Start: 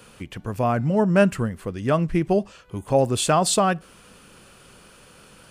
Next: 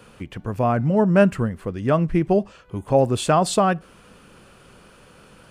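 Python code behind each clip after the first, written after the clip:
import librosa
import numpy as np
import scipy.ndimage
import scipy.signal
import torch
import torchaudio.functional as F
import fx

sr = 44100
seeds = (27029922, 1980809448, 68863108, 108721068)

y = fx.high_shelf(x, sr, hz=3100.0, db=-8.5)
y = y * librosa.db_to_amplitude(2.0)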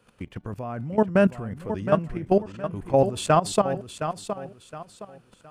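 y = fx.level_steps(x, sr, step_db=16)
y = fx.echo_feedback(y, sr, ms=716, feedback_pct=31, wet_db=-9.5)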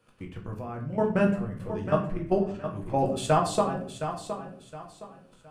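y = fx.room_shoebox(x, sr, seeds[0], volume_m3=59.0, walls='mixed', distance_m=0.66)
y = y * librosa.db_to_amplitude(-6.0)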